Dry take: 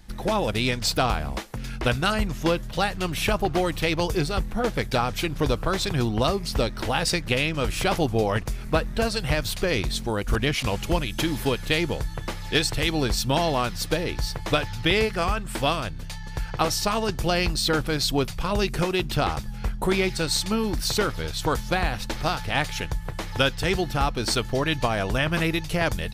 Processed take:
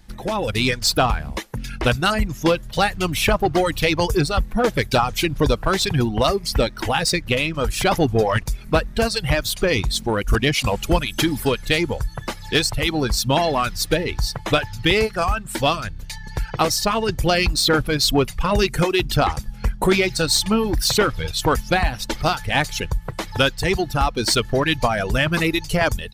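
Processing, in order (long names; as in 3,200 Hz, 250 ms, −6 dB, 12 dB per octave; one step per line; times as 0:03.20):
reverb reduction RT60 1.6 s
automatic gain control gain up to 11.5 dB
in parallel at −5.5 dB: soft clipping −18 dBFS, distortion −8 dB
on the sum: level −4 dB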